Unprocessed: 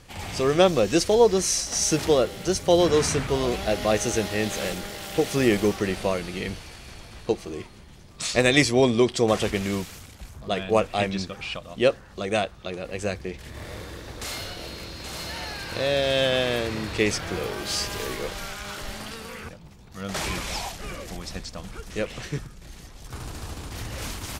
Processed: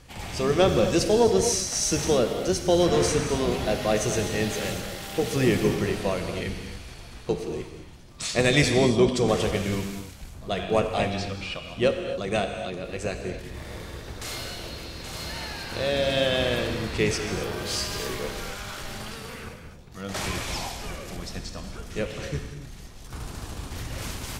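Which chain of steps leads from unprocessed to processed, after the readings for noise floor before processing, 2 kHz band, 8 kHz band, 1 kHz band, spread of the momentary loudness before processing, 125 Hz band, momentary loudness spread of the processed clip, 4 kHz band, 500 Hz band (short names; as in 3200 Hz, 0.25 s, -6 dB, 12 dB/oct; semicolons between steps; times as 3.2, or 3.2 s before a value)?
-46 dBFS, -1.5 dB, -1.0 dB, -1.5 dB, 18 LU, +1.5 dB, 18 LU, -1.0 dB, -1.5 dB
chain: octaver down 1 oct, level -3 dB; in parallel at -7.5 dB: soft clip -15.5 dBFS, distortion -13 dB; on the sum: non-linear reverb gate 0.3 s flat, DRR 5.5 dB; gain -5 dB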